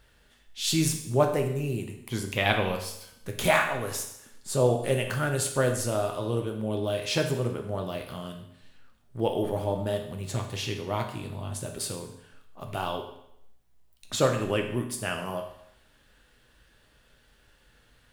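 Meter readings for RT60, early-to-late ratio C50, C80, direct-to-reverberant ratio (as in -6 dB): 0.75 s, 7.5 dB, 10.0 dB, 3.0 dB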